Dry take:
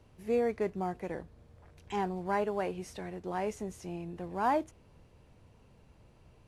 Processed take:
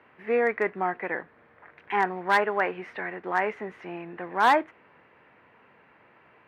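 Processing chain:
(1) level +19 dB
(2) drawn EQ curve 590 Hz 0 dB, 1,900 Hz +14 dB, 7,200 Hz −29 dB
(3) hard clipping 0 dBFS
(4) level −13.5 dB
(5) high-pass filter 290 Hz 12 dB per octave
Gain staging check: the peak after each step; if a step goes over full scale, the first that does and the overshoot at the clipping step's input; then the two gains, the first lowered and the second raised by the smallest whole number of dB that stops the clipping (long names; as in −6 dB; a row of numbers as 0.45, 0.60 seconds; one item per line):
+0.5, +7.0, 0.0, −13.5, −9.5 dBFS
step 1, 7.0 dB
step 1 +12 dB, step 4 −6.5 dB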